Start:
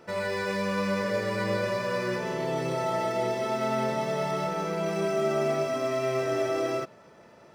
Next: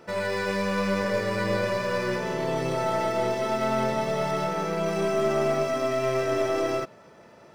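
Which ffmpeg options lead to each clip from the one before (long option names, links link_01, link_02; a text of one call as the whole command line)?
ffmpeg -i in.wav -af "aeval=exprs='0.158*(cos(1*acos(clip(val(0)/0.158,-1,1)))-cos(1*PI/2))+0.0112*(cos(4*acos(clip(val(0)/0.158,-1,1)))-cos(4*PI/2))':channel_layout=same,volume=2dB" out.wav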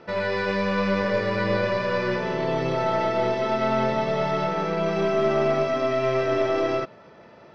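ffmpeg -i in.wav -af "lowpass=frequency=4800:width=0.5412,lowpass=frequency=4800:width=1.3066,volume=2.5dB" out.wav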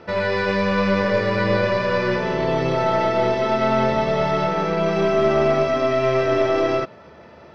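ffmpeg -i in.wav -af "equalizer=frequency=75:width_type=o:width=0.32:gain=13,volume=4dB" out.wav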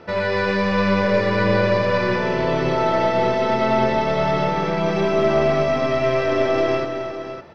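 ffmpeg -i in.wav -af "aecho=1:1:265|558:0.335|0.282" out.wav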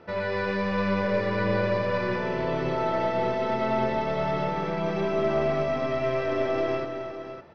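ffmpeg -i in.wav -af "highshelf=frequency=5700:gain=-9.5,volume=-7dB" out.wav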